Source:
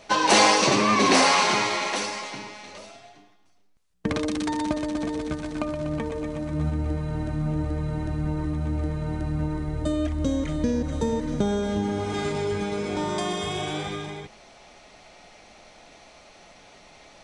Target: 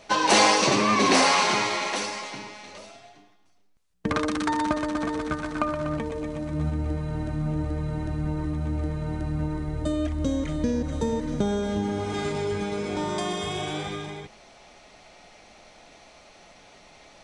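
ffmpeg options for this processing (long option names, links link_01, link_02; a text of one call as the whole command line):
ffmpeg -i in.wav -filter_complex "[0:a]asettb=1/sr,asplit=3[link_01][link_02][link_03];[link_01]atrim=end=4.114[link_04];[link_02]atrim=start=4.11:end=5.97,asetpts=PTS-STARTPTS,afade=type=in:duration=0.004:curve=qsin,afade=type=out:start_time=1.856:duration=0.004:curve=qsin,equalizer=frequency=1300:width_type=o:width=1:gain=11.5[link_05];[link_03]atrim=start=5.966[link_06];[link_04][link_05]acrossfade=duration=0.004:curve1=hsin:curve2=qsin[link_07];[link_07][link_06]acrossfade=duration=0.004:curve1=qsin:curve2=hsin,volume=-1dB" out.wav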